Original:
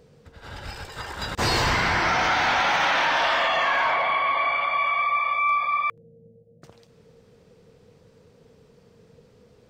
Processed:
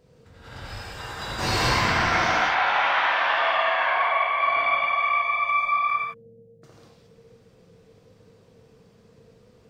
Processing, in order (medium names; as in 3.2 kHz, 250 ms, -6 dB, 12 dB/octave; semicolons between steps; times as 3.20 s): 2.32–4.40 s: three-band isolator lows -13 dB, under 470 Hz, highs -21 dB, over 3.8 kHz; gated-style reverb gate 250 ms flat, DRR -6 dB; trim -6.5 dB